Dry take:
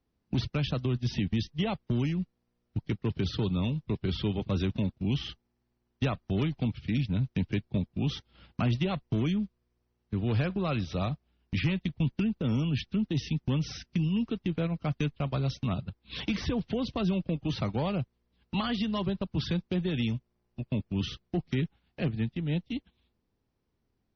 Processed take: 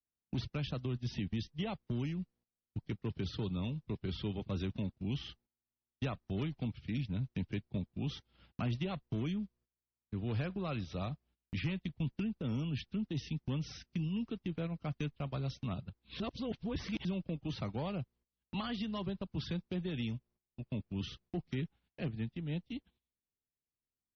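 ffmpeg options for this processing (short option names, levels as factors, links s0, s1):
-filter_complex "[0:a]asplit=3[s0][s1][s2];[s0]atrim=end=16.202[s3];[s1]atrim=start=16.198:end=17.052,asetpts=PTS-STARTPTS,areverse[s4];[s2]atrim=start=17.048[s5];[s3][s4]acrossfade=d=0.004:c1=hsin:c2=hsin[s6];[s6][s5]acrossfade=d=0.004:c1=hsin:c2=hsin,agate=range=0.158:threshold=0.00141:ratio=16:detection=peak,volume=0.398"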